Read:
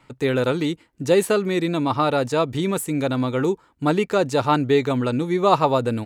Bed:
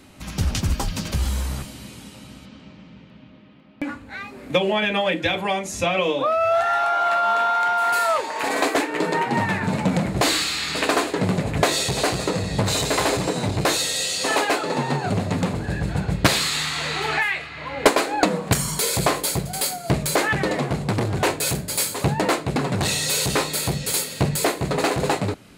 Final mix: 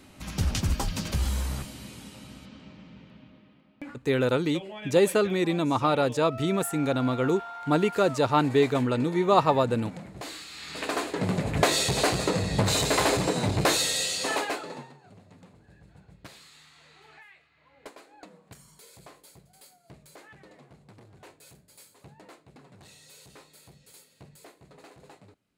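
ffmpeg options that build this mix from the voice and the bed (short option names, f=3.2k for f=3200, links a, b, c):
-filter_complex "[0:a]adelay=3850,volume=-3.5dB[a];[1:a]volume=13dB,afade=t=out:st=3.08:d=1:silence=0.16788,afade=t=in:st=10.48:d=1.26:silence=0.141254,afade=t=out:st=13.89:d=1.04:silence=0.0421697[b];[a][b]amix=inputs=2:normalize=0"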